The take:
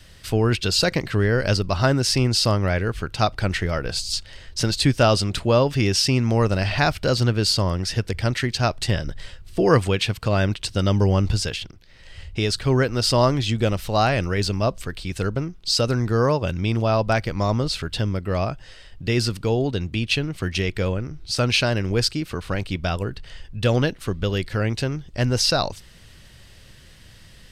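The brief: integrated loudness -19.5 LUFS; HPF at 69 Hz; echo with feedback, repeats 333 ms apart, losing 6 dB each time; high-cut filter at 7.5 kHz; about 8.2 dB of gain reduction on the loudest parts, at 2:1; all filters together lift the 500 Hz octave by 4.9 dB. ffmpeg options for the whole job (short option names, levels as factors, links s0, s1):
-af "highpass=69,lowpass=7500,equalizer=f=500:t=o:g=6,acompressor=threshold=0.0631:ratio=2,aecho=1:1:333|666|999|1332|1665|1998:0.501|0.251|0.125|0.0626|0.0313|0.0157,volume=1.78"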